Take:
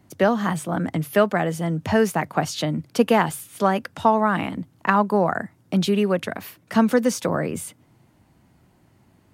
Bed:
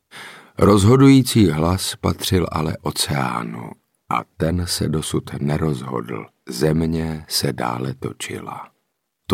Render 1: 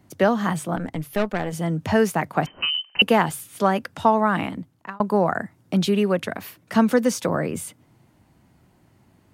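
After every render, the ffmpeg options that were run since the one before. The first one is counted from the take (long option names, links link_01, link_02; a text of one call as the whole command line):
ffmpeg -i in.wav -filter_complex "[0:a]asettb=1/sr,asplit=3[link_01][link_02][link_03];[link_01]atrim=end=0.764[link_04];[link_02]atrim=start=0.76:end=1.53,asetpts=PTS-STARTPTS,afade=type=in:duration=0.004:curve=qsin,afade=type=out:start_time=0.766:duration=0.004:curve=qsin,aeval=exprs='(tanh(6.31*val(0)+0.8)-tanh(0.8))/6.31':channel_layout=same[link_05];[link_03]atrim=start=1.526[link_06];[link_04][link_05]acrossfade=duration=0.004:curve1=hsin:curve2=qsin[link_07];[link_07][link_06]acrossfade=duration=0.004:curve1=qsin:curve2=hsin,asettb=1/sr,asplit=3[link_08][link_09][link_10];[link_08]atrim=end=2.464[link_11];[link_09]atrim=start=2.46:end=3.02,asetpts=PTS-STARTPTS,afade=type=in:duration=0.004:curve=qsin,afade=type=out:start_time=0.556:duration=0.004:curve=qsin,lowpass=frequency=2700:width_type=q:width=0.5098,lowpass=frequency=2700:width_type=q:width=0.6013,lowpass=frequency=2700:width_type=q:width=0.9,lowpass=frequency=2700:width_type=q:width=2.563,afreqshift=-3200[link_12];[link_10]atrim=start=3.016[link_13];[link_11][link_12]acrossfade=duration=0.004:curve1=hsin:curve2=qsin[link_14];[link_14][link_13]acrossfade=duration=0.004:curve1=qsin:curve2=hsin,asplit=2[link_15][link_16];[link_15]atrim=end=5,asetpts=PTS-STARTPTS,afade=type=out:start_time=4.44:duration=0.56[link_17];[link_16]atrim=start=5,asetpts=PTS-STARTPTS,afade=type=in:duration=0.004:curve=hsin[link_18];[link_17][link_18]concat=n=2:v=0:a=1" out.wav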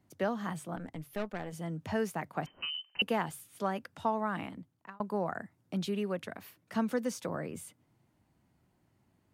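ffmpeg -i in.wav -af "volume=-13.5dB" out.wav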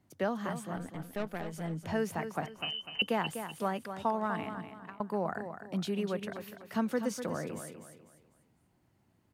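ffmpeg -i in.wav -af "aecho=1:1:248|496|744|992:0.355|0.124|0.0435|0.0152" out.wav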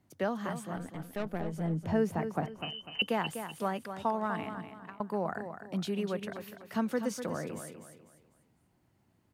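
ffmpeg -i in.wav -filter_complex "[0:a]asettb=1/sr,asplit=3[link_01][link_02][link_03];[link_01]atrim=end=1.254[link_04];[link_02]atrim=start=1.25:end=2.92,asetpts=PTS-STARTPTS,afade=type=in:duration=0.004:curve=qsin,afade=type=out:start_time=1.666:duration=0.004:curve=qsin,tiltshelf=frequency=970:gain=5.5[link_05];[link_03]atrim=start=2.916[link_06];[link_04][link_05]acrossfade=duration=0.004:curve1=hsin:curve2=qsin[link_07];[link_07][link_06]acrossfade=duration=0.004:curve1=qsin:curve2=hsin" out.wav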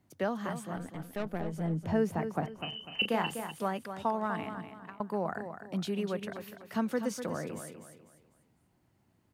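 ffmpeg -i in.wav -filter_complex "[0:a]asettb=1/sr,asplit=3[link_01][link_02][link_03];[link_01]atrim=end=2.694[link_04];[link_02]atrim=start=2.69:end=3.51,asetpts=PTS-STARTPTS,afade=type=in:duration=0.004:curve=qsin,afade=type=out:start_time=0.816:duration=0.004:curve=qsin,asplit=2[link_05][link_06];[link_06]adelay=35,volume=-6dB[link_07];[link_05][link_07]amix=inputs=2:normalize=0,atrim=end_sample=36162[link_08];[link_03]atrim=start=3.506[link_09];[link_04][link_08]acrossfade=duration=0.004:curve1=hsin:curve2=qsin[link_10];[link_10][link_09]acrossfade=duration=0.004:curve1=qsin:curve2=hsin" out.wav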